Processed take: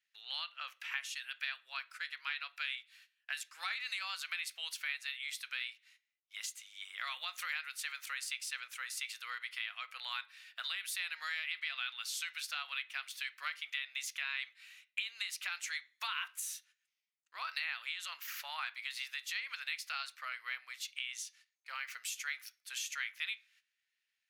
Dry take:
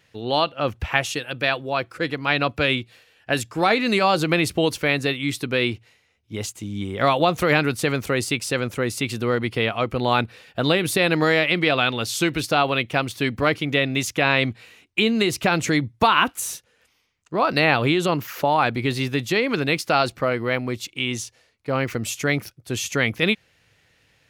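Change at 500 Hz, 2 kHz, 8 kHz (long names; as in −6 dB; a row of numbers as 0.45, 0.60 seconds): below −40 dB, −15.0 dB, −11.5 dB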